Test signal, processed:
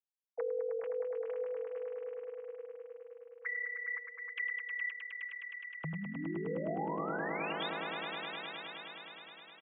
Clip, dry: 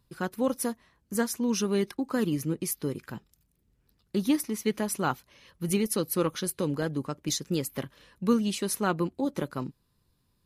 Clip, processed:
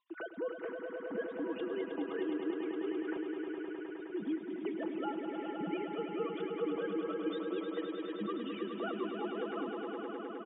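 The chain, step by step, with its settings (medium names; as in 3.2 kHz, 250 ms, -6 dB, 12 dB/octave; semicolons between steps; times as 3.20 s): formants replaced by sine waves; comb 6.1 ms, depth 53%; compression 2.5:1, threshold -43 dBFS; echo with a slow build-up 104 ms, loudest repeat 5, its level -7.5 dB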